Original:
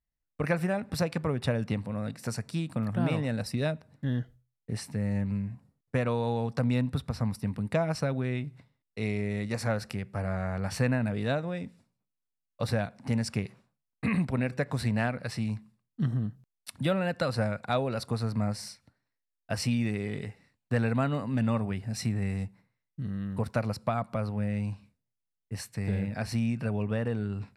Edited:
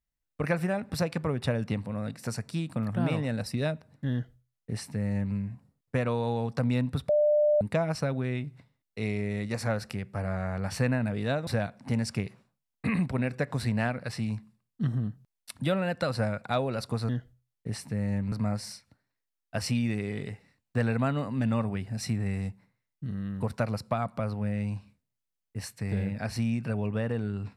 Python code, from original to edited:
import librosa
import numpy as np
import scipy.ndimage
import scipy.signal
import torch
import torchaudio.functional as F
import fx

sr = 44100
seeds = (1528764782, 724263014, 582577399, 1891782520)

y = fx.edit(x, sr, fx.duplicate(start_s=4.12, length_s=1.23, to_s=18.28),
    fx.bleep(start_s=7.09, length_s=0.52, hz=597.0, db=-19.5),
    fx.cut(start_s=11.47, length_s=1.19), tone=tone)